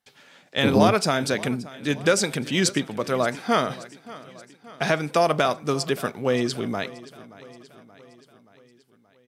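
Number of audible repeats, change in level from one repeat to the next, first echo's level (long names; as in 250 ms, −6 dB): 4, −5.0 dB, −19.0 dB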